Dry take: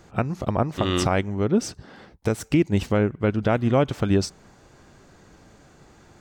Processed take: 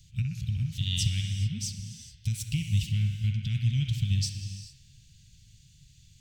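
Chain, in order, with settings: elliptic band-stop 130–3100 Hz, stop band 50 dB; bell 350 Hz +6.5 dB 1.1 oct; band-limited delay 63 ms, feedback 65%, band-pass 1500 Hz, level -4.5 dB; non-linear reverb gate 0.46 s flat, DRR 8.5 dB

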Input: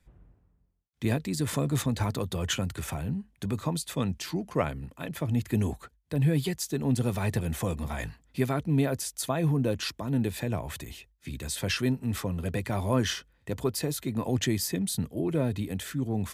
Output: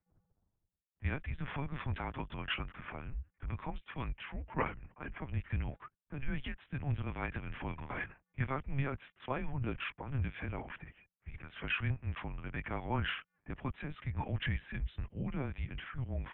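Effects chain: low-pass opened by the level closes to 750 Hz, open at -24.5 dBFS; bell 440 Hz -12 dB 1.6 oct; LPC vocoder at 8 kHz pitch kept; low shelf 110 Hz +8 dB; mistuned SSB -140 Hz 200–2900 Hz

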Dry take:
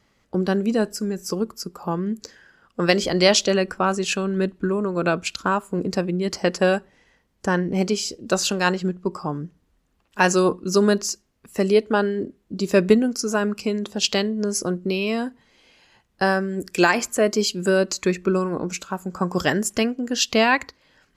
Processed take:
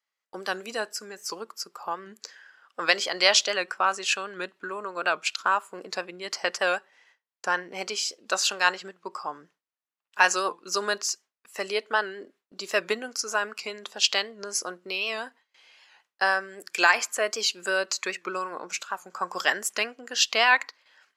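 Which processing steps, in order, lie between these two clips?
HPF 940 Hz 12 dB/oct; gate with hold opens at -51 dBFS; high shelf 7400 Hz +2 dB, from 0.8 s -8 dB; record warp 78 rpm, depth 100 cents; gain +1.5 dB

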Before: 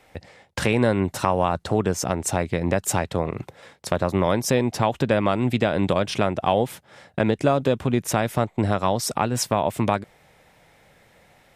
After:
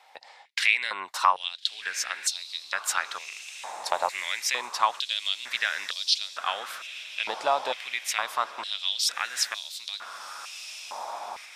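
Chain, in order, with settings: bell 4200 Hz +9.5 dB 1.2 oct; on a send: diffused feedback echo 1.365 s, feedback 55%, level -12 dB; on the sum: stepped high-pass 2.2 Hz 860–4200 Hz; gain -6.5 dB

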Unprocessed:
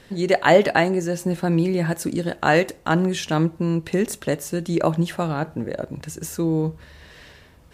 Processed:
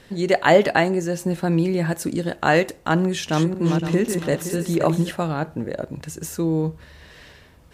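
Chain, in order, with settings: 3.03–5.11 regenerating reverse delay 0.258 s, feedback 50%, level -5.5 dB

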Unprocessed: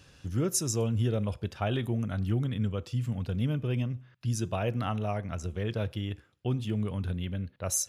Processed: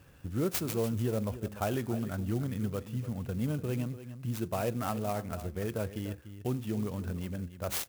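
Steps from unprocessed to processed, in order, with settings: bell 4500 Hz -12.5 dB 1 oct; on a send: echo 0.293 s -13 dB; on the sum: dynamic EQ 110 Hz, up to -6 dB, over -41 dBFS, Q 1.3; clock jitter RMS 0.045 ms

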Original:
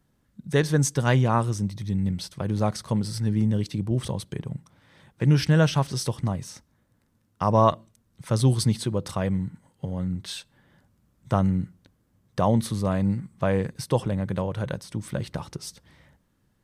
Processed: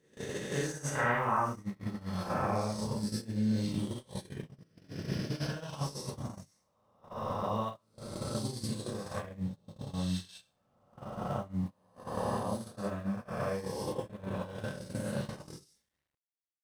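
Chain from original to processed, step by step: spectral swells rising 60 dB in 1.80 s; compressor 6:1, threshold -28 dBFS, peak gain reduction 14.5 dB; 0.95–2.55 graphic EQ 1000/2000/4000/8000 Hz +8/+9/-10/-7 dB; Schroeder reverb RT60 0.39 s, combs from 29 ms, DRR -5 dB; sample gate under -42.5 dBFS; gate -24 dBFS, range -29 dB; gain -8.5 dB

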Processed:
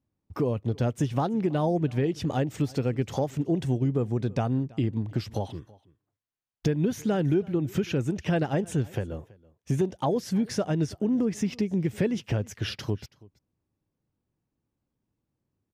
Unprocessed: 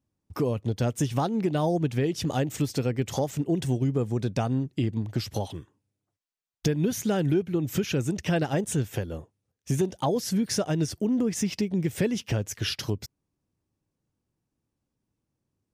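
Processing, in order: high shelf 4200 Hz -11.5 dB; echo 0.328 s -23.5 dB

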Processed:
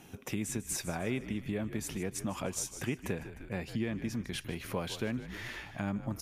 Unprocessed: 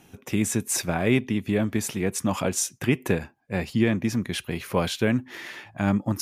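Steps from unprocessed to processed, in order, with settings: frequency-shifting echo 0.152 s, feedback 46%, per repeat -64 Hz, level -14.5 dB; compressor 2:1, threshold -41 dBFS, peak gain reduction 14 dB

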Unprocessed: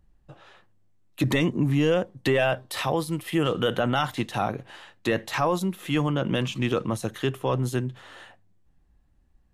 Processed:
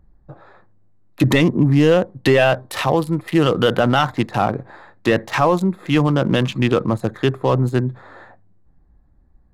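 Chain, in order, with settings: Wiener smoothing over 15 samples; gain +8.5 dB

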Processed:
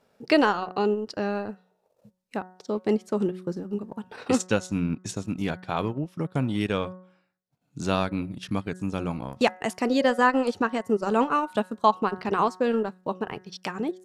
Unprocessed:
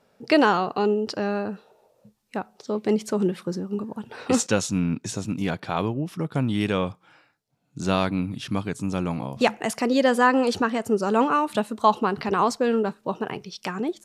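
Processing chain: transient shaper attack +1 dB, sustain -12 dB; de-hum 184 Hz, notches 11; gain -2 dB

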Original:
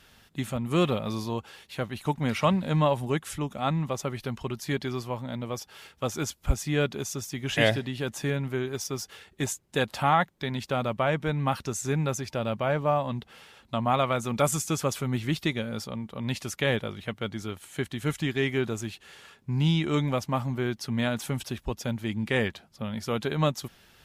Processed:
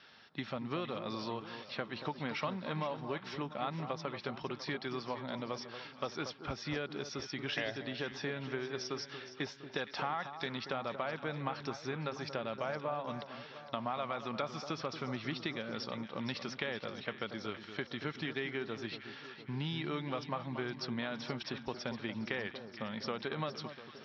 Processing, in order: HPF 110 Hz; low shelf 160 Hz -11 dB; in parallel at +1.5 dB: limiter -16.5 dBFS, peak gain reduction 8.5 dB; on the sum: compressor, threshold -26 dBFS, peak gain reduction 12 dB; rippled Chebyshev low-pass 5600 Hz, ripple 3 dB; on a send: echo with dull and thin repeats by turns 0.232 s, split 1300 Hz, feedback 73%, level -9.5 dB; on the sum: gain -6 dB

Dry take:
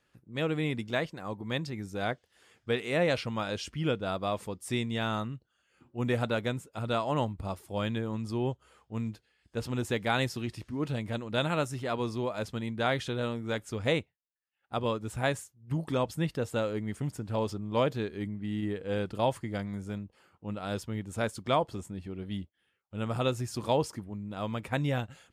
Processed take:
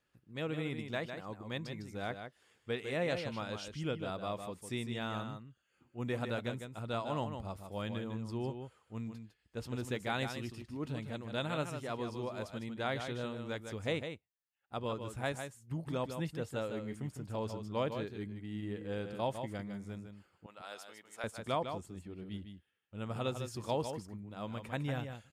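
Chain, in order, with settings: 20.46–21.24 HPF 750 Hz 12 dB/oct; on a send: echo 0.154 s -7.5 dB; on the sum: gain -7.5 dB

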